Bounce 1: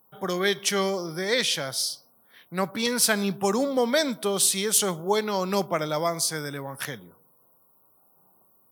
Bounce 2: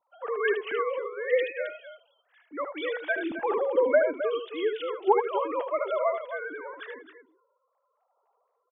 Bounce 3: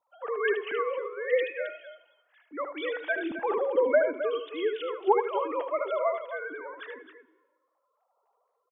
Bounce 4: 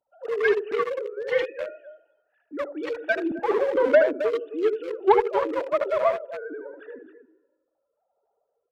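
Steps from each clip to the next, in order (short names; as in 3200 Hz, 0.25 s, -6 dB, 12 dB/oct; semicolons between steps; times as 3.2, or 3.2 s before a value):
sine-wave speech; high shelf 3000 Hz -6.5 dB; on a send: loudspeakers at several distances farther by 26 m -7 dB, 91 m -11 dB; on the sum: gain -3 dB
on a send at -20 dB: comb 2.8 ms + reverb RT60 1.3 s, pre-delay 76 ms; on the sum: gain -1 dB
Wiener smoothing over 41 samples; added harmonics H 5 -22 dB, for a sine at -10 dBFS; notch 500 Hz, Q 16; gain +5 dB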